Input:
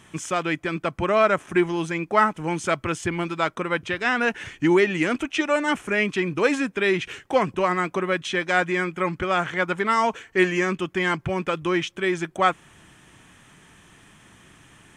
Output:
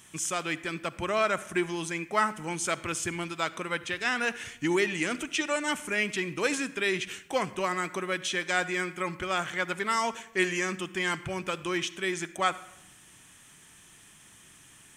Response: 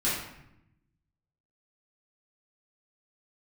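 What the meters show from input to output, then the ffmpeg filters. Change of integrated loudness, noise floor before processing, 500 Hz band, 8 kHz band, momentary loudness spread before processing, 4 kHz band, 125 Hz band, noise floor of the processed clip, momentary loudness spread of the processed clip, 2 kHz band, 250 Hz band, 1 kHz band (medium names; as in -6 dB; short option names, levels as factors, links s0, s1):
-6.5 dB, -53 dBFS, -8.5 dB, +4.0 dB, 6 LU, -1.5 dB, -9.0 dB, -55 dBFS, 5 LU, -5.0 dB, -8.5 dB, -7.0 dB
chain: -filter_complex "[0:a]crystalizer=i=4:c=0,asplit=2[s0][s1];[1:a]atrim=start_sample=2205,adelay=47[s2];[s1][s2]afir=irnorm=-1:irlink=0,volume=0.0501[s3];[s0][s3]amix=inputs=2:normalize=0,volume=0.355"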